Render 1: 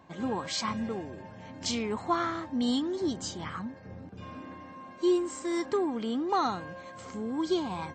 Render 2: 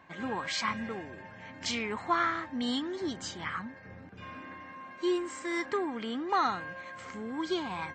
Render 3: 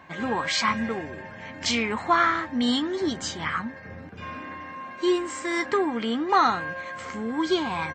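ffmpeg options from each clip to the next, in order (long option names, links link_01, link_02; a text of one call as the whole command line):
ffmpeg -i in.wav -af "equalizer=frequency=1900:width_type=o:width=1.5:gain=12.5,volume=-5dB" out.wav
ffmpeg -i in.wav -filter_complex "[0:a]asplit=2[link_01][link_02];[link_02]adelay=13,volume=-11dB[link_03];[link_01][link_03]amix=inputs=2:normalize=0,volume=7.5dB" out.wav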